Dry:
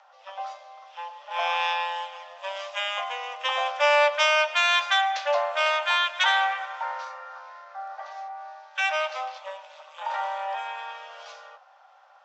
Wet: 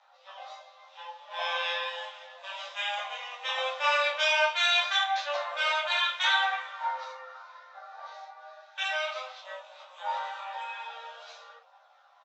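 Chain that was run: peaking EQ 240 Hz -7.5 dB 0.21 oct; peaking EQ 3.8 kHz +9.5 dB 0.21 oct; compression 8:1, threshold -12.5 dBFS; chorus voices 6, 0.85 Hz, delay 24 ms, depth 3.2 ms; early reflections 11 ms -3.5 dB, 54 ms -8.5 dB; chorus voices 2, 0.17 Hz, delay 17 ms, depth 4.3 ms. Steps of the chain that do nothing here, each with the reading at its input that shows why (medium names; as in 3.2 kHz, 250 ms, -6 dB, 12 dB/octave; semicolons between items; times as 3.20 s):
peaking EQ 240 Hz: input has nothing below 480 Hz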